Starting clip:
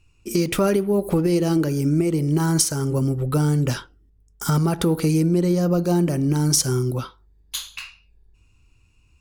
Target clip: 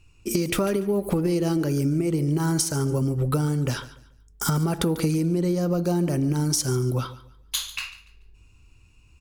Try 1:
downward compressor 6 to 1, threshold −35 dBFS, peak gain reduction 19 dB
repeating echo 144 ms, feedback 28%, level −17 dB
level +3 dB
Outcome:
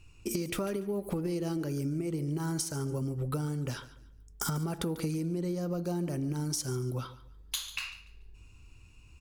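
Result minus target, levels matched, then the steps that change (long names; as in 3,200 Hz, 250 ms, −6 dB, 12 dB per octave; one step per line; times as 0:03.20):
downward compressor: peak gain reduction +9.5 dB
change: downward compressor 6 to 1, threshold −23.5 dBFS, peak gain reduction 9.5 dB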